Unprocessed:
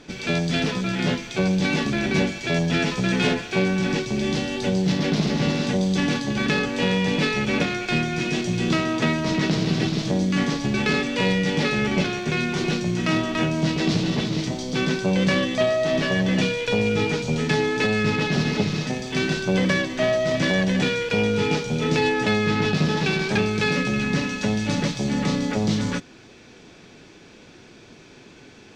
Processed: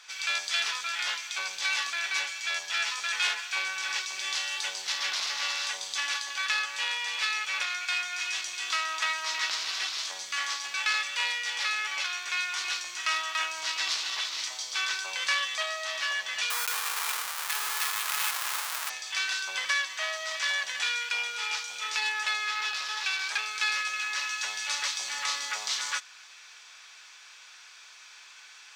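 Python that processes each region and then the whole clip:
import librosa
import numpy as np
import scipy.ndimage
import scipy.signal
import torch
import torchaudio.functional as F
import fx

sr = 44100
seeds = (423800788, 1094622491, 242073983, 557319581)

y = fx.chain(x, sr, fx.bessel_lowpass(hz=5800.0, order=2),
    fx.schmitt(flips_db=-28.5), at=(16.5, 18.9))
y = scipy.signal.sosfilt(scipy.signal.cheby1(3, 1.0, 1100.0, 'highpass', fs=sr, output='sos'), y)
y = fx.high_shelf(y, sr, hz=5600.0, db=8.0)
y = fx.rider(y, sr, range_db=10, speed_s=2.0)
y = y * librosa.db_to_amplitude(-2.5)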